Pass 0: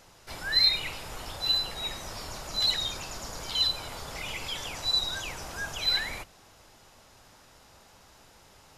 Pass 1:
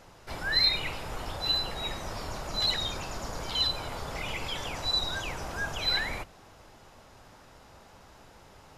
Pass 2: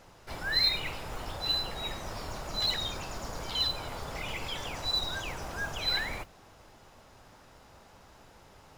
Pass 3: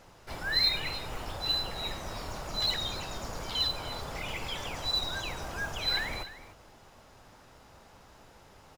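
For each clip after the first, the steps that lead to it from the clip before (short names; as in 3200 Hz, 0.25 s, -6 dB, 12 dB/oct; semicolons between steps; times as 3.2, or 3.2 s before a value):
high shelf 2700 Hz -9.5 dB; gain +4.5 dB
modulation noise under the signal 25 dB; gain -2 dB
echo 0.297 s -14.5 dB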